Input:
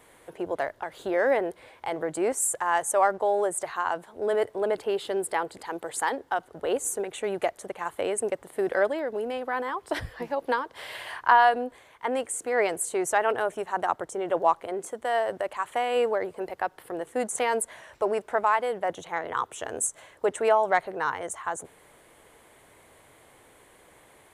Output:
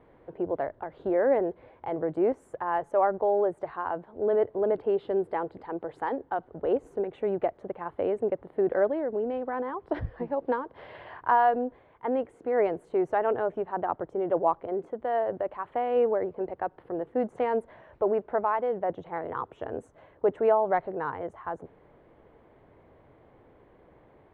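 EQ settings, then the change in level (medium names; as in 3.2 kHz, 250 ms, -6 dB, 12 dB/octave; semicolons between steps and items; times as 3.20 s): distance through air 330 m; tilt shelf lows +8 dB, about 1.1 kHz; -3.5 dB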